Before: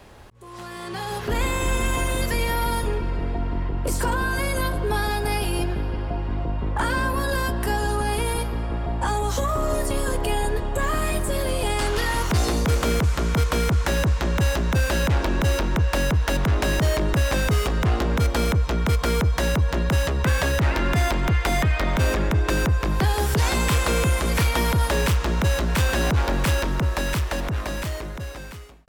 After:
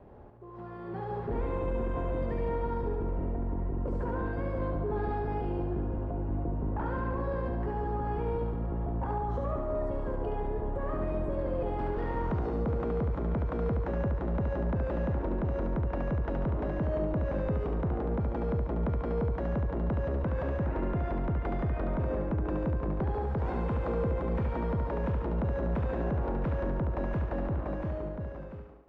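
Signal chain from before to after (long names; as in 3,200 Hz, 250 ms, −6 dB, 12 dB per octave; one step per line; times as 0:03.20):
Bessel low-pass filter 540 Hz, order 2
low-shelf EQ 130 Hz −5.5 dB
brickwall limiter −22.5 dBFS, peak gain reduction 6.5 dB
soft clipping −22.5 dBFS, distortion −23 dB
on a send: feedback echo with a high-pass in the loop 71 ms, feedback 56%, high-pass 220 Hz, level −4 dB
on the sum: level −1 dB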